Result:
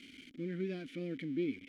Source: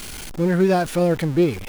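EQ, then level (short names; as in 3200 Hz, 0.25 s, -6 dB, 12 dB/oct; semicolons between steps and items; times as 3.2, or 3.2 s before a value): vowel filter i; -4.5 dB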